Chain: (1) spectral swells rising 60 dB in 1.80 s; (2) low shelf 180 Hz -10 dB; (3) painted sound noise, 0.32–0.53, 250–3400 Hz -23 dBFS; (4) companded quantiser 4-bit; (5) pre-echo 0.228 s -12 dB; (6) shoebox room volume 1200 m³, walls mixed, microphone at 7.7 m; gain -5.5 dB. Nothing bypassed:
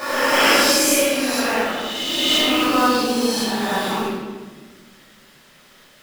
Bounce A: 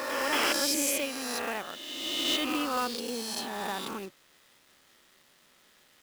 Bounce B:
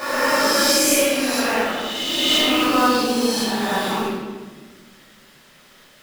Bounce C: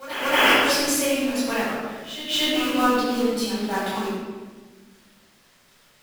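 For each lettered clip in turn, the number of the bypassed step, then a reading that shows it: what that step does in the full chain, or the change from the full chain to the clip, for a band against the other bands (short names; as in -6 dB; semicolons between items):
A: 6, echo-to-direct 10.0 dB to none; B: 3, 2 kHz band -1.5 dB; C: 1, 8 kHz band -3.0 dB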